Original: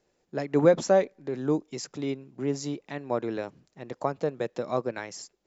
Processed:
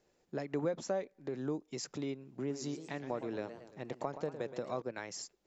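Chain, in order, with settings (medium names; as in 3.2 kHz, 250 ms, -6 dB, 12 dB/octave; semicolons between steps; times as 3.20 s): compression 2.5:1, threshold -36 dBFS, peak gain reduction 14.5 dB; 2.30–4.82 s: modulated delay 116 ms, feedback 54%, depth 193 cents, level -11 dB; trim -1.5 dB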